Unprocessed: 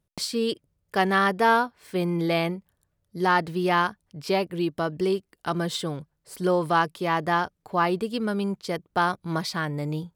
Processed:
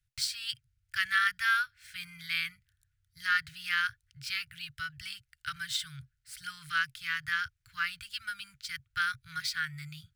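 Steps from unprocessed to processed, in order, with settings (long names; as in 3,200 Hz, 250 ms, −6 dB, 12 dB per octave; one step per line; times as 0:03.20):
running median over 3 samples
Chebyshev band-stop filter 130–1,400 Hz, order 5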